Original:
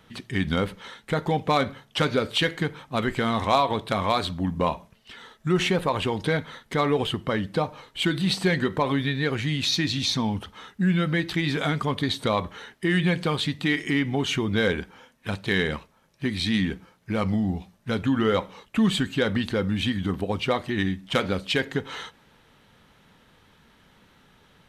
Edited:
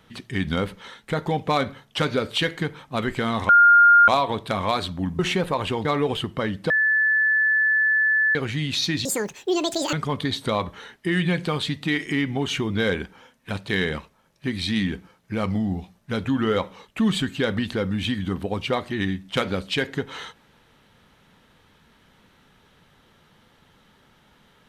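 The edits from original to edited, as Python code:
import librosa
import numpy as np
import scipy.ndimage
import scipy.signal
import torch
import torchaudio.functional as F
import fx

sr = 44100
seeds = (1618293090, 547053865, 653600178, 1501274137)

y = fx.edit(x, sr, fx.insert_tone(at_s=3.49, length_s=0.59, hz=1410.0, db=-9.5),
    fx.cut(start_s=4.6, length_s=0.94),
    fx.cut(start_s=6.2, length_s=0.55),
    fx.bleep(start_s=7.6, length_s=1.65, hz=1740.0, db=-16.5),
    fx.speed_span(start_s=9.95, length_s=1.76, speed=2.0), tone=tone)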